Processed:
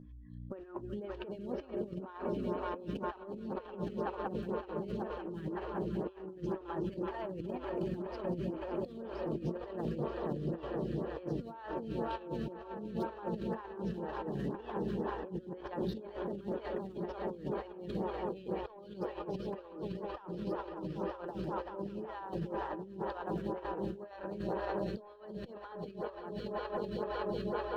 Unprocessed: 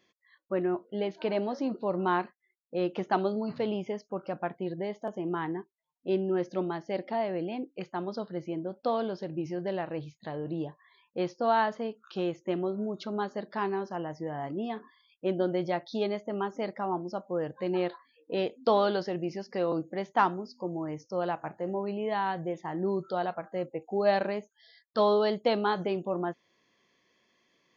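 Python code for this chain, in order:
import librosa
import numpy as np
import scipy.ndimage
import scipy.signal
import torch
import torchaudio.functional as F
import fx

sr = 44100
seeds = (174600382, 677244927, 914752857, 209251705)

y = fx.spec_quant(x, sr, step_db=15)
y = scipy.signal.sosfilt(scipy.signal.butter(2, 3700.0, 'lowpass', fs=sr, output='sos'), y)
y = fx.leveller(y, sr, passes=1)
y = fx.peak_eq(y, sr, hz=690.0, db=-11.0, octaves=0.2)
y = fx.notch(y, sr, hz=2100.0, q=5.7)
y = fx.echo_swell(y, sr, ms=188, loudest=5, wet_db=-11.5)
y = fx.add_hum(y, sr, base_hz=60, snr_db=16)
y = fx.over_compress(y, sr, threshold_db=-31.0, ratio=-0.5)
y = fx.peak_eq(y, sr, hz=140.0, db=4.0, octaves=0.54)
y = fx.stagger_phaser(y, sr, hz=2.0)
y = F.gain(torch.from_numpy(y), -5.0).numpy()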